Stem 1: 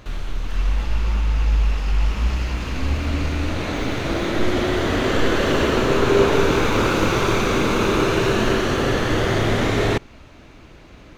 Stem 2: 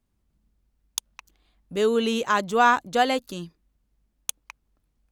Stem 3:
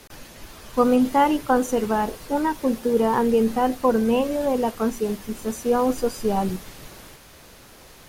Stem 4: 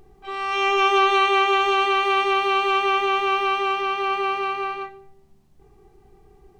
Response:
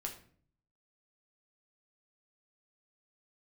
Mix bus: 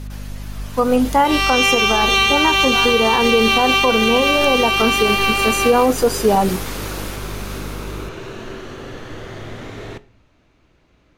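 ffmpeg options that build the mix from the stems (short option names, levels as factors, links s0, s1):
-filter_complex "[0:a]volume=0.168,asplit=2[s0][s1];[s1]volume=0.422[s2];[1:a]adelay=150,volume=0.355[s3];[2:a]highpass=f=340:p=1,dynaudnorm=f=580:g=3:m=4.47,aeval=exprs='val(0)+0.0282*(sin(2*PI*50*n/s)+sin(2*PI*2*50*n/s)/2+sin(2*PI*3*50*n/s)/3+sin(2*PI*4*50*n/s)/4+sin(2*PI*5*50*n/s)/5)':c=same,volume=1.26[s4];[3:a]highshelf=f=3800:t=q:w=1.5:g=13.5,acompressor=threshold=0.0891:ratio=6,equalizer=f=2700:w=0.99:g=14.5,adelay=1000,volume=1.41[s5];[4:a]atrim=start_sample=2205[s6];[s2][s6]afir=irnorm=-1:irlink=0[s7];[s0][s3][s4][s5][s7]amix=inputs=5:normalize=0,alimiter=limit=0.562:level=0:latency=1:release=121"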